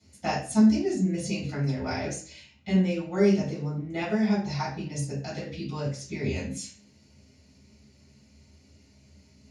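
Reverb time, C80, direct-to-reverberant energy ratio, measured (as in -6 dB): 0.45 s, 10.0 dB, -12.5 dB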